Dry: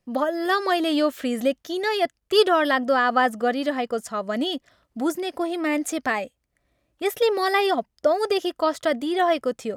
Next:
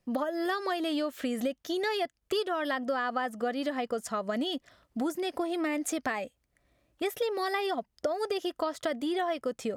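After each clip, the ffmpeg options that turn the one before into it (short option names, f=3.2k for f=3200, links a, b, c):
-af "acompressor=threshold=-28dB:ratio=6"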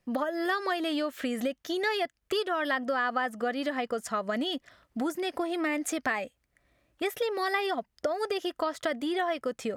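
-af "equalizer=f=1.8k:w=1:g=4.5"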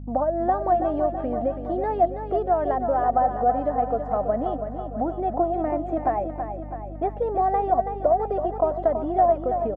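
-af "lowpass=f=740:t=q:w=4.9,aecho=1:1:328|656|984|1312|1640|1968|2296:0.398|0.235|0.139|0.0818|0.0482|0.0285|0.0168,aeval=exprs='val(0)+0.0178*(sin(2*PI*50*n/s)+sin(2*PI*2*50*n/s)/2+sin(2*PI*3*50*n/s)/3+sin(2*PI*4*50*n/s)/4+sin(2*PI*5*50*n/s)/5)':c=same"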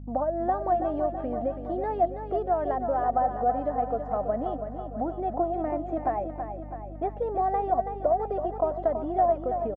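-af "aresample=16000,aresample=44100,volume=-4dB"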